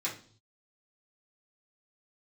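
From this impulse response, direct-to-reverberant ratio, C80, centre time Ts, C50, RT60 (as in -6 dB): -7.5 dB, 15.0 dB, 22 ms, 9.5 dB, not exponential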